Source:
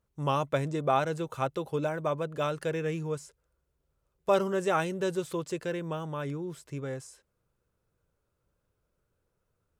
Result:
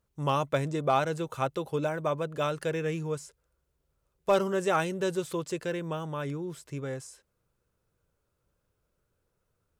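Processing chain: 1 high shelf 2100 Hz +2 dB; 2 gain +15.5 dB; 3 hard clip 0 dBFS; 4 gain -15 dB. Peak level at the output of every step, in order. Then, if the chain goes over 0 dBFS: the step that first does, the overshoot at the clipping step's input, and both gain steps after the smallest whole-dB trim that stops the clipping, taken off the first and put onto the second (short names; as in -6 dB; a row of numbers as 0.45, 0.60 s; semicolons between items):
-12.5, +3.0, 0.0, -15.0 dBFS; step 2, 3.0 dB; step 2 +12.5 dB, step 4 -12 dB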